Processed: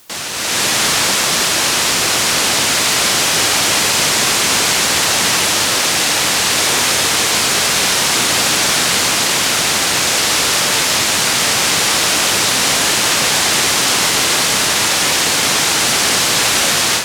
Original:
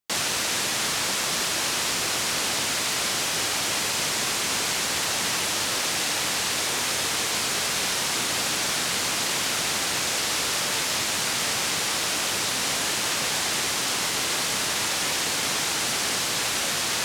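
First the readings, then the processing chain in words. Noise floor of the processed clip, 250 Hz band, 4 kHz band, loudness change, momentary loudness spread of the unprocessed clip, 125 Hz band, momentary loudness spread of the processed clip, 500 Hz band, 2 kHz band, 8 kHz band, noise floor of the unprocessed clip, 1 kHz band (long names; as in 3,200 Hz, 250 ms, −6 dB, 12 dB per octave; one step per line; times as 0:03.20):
−16 dBFS, +11.5 dB, +11.5 dB, +11.5 dB, 0 LU, +11.5 dB, 1 LU, +11.5 dB, +11.5 dB, +11.5 dB, −27 dBFS, +11.5 dB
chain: automatic gain control gain up to 14 dB
in parallel at −6.5 dB: bit-depth reduction 6 bits, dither triangular
on the sum: level −3 dB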